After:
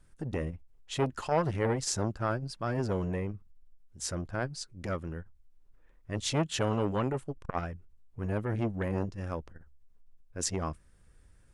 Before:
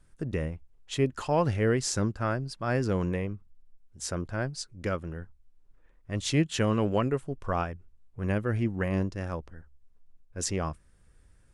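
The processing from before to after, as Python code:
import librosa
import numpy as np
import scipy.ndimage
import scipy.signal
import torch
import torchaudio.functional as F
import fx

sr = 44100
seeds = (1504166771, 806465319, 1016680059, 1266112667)

y = fx.transformer_sat(x, sr, knee_hz=670.0)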